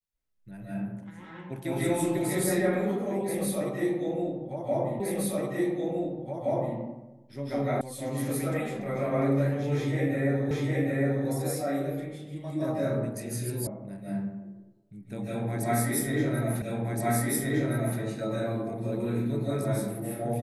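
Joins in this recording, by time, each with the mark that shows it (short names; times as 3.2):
5 repeat of the last 1.77 s
7.81 sound cut off
10.51 repeat of the last 0.76 s
13.67 sound cut off
16.62 repeat of the last 1.37 s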